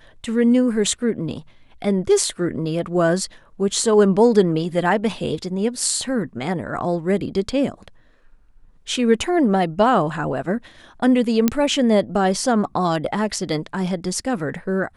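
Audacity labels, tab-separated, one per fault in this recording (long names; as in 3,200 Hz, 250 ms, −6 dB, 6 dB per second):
11.480000	11.480000	click −3 dBFS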